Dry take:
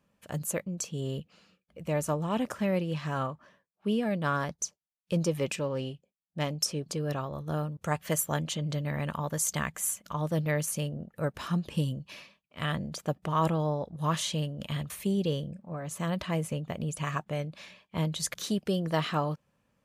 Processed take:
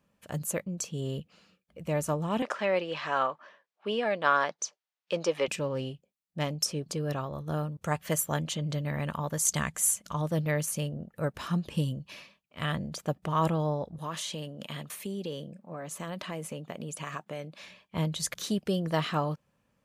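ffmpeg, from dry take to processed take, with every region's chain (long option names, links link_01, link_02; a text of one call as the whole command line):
ffmpeg -i in.wav -filter_complex "[0:a]asettb=1/sr,asplit=3[link_01][link_02][link_03];[link_01]atrim=end=2.424[link_04];[link_02]atrim=start=2.42:end=5.48,asetpts=PTS-STARTPTS,afade=type=in:duration=0.004:curve=qsin,afade=type=out:start_time=3.056:duration=0.004:curve=qsin,acontrast=71,highpass=530,lowpass=4400[link_05];[link_03]atrim=start=5.476[link_06];[link_04][link_05]acrossfade=duration=0.004:curve1=hsin:curve2=qsin[link_07];[link_07][link_06]acrossfade=duration=0.004:curve1=qsin:curve2=hsin,asettb=1/sr,asplit=3[link_08][link_09][link_10];[link_08]atrim=end=9.454[link_11];[link_09]atrim=start=9.45:end=10.22,asetpts=PTS-STARTPTS,afade=type=in:duration=0.004:curve=qsin,afade=type=out:start_time=0.766:duration=0.004:curve=qsin,lowpass=frequency=12000:width=0.5412,lowpass=frequency=12000:width=1.3066,bass=frequency=250:gain=2,treble=frequency=4000:gain=6[link_12];[link_10]atrim=start=10.216[link_13];[link_11][link_12]acrossfade=duration=0.004:curve1=hsin:curve2=qsin[link_14];[link_14][link_13]acrossfade=duration=0.004:curve1=qsin:curve2=hsin,asettb=1/sr,asplit=3[link_15][link_16][link_17];[link_15]atrim=end=13.984[link_18];[link_16]atrim=start=13.98:end=17.63,asetpts=PTS-STARTPTS,afade=type=in:duration=0.004:curve=qsin,afade=type=out:start_time=3.646:duration=0.004:curve=qsin,highpass=210,acompressor=threshold=-33dB:ratio=2.5:attack=3.2:release=140:knee=1:detection=peak[link_19];[link_17]atrim=start=17.626[link_20];[link_18][link_19]acrossfade=duration=0.004:curve1=hsin:curve2=qsin[link_21];[link_21][link_20]acrossfade=duration=0.004:curve1=qsin:curve2=hsin" out.wav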